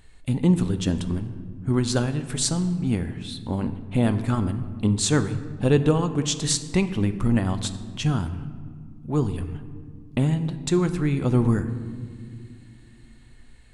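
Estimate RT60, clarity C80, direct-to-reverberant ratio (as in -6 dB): 2.1 s, 13.5 dB, 10.0 dB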